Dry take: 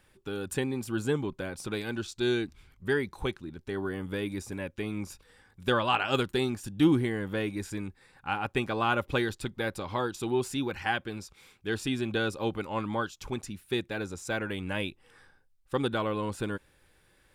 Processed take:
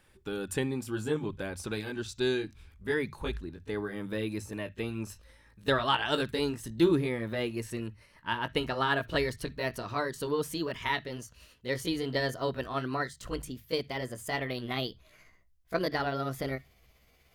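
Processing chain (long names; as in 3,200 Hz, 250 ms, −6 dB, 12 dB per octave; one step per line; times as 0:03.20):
pitch glide at a constant tempo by +5 semitones starting unshifted
mains-hum notches 50/100/150 Hz
on a send: convolution reverb, pre-delay 46 ms, DRR 23 dB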